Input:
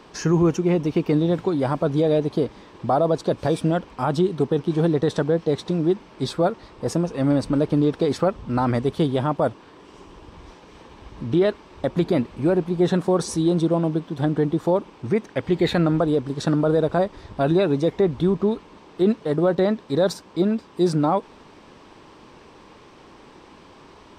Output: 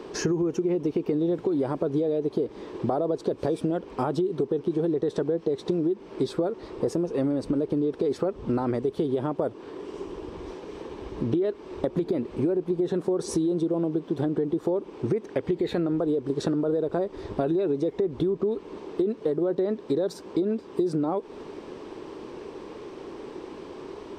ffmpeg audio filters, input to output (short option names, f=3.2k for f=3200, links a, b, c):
-af "equalizer=f=390:w=1.4:g=13.5,alimiter=limit=-7.5dB:level=0:latency=1:release=97,acompressor=threshold=-23dB:ratio=6"